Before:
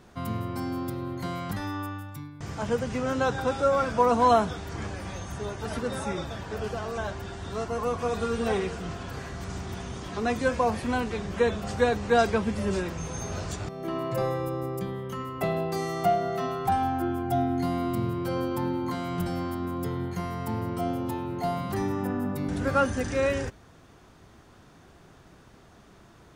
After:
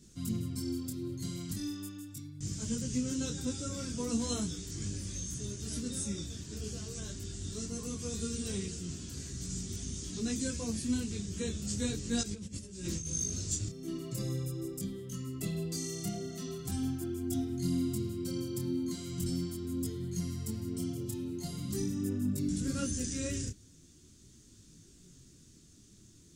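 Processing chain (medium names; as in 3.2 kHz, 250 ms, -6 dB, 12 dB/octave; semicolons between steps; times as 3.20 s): FFT filter 310 Hz 0 dB, 780 Hz -26 dB, 2.3 kHz -9 dB, 7.4 kHz +14 dB, 13 kHz +3 dB; 12.21–13.06 s: compressor with a negative ratio -35 dBFS, ratio -0.5; detune thickener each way 14 cents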